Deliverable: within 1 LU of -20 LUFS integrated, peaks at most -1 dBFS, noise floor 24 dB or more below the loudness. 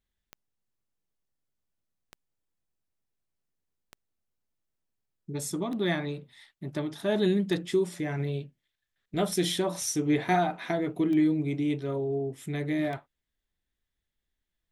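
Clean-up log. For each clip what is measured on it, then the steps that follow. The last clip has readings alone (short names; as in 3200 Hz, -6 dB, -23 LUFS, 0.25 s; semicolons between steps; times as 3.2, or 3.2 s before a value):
clicks 8; loudness -29.0 LUFS; peak -13.0 dBFS; loudness target -20.0 LUFS
-> de-click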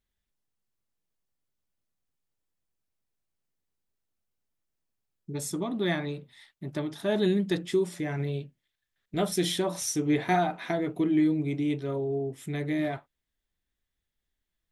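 clicks 0; loudness -29.0 LUFS; peak -13.0 dBFS; loudness target -20.0 LUFS
-> gain +9 dB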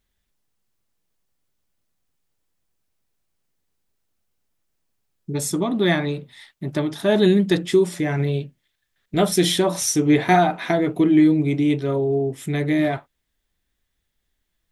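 loudness -20.0 LUFS; peak -4.0 dBFS; noise floor -75 dBFS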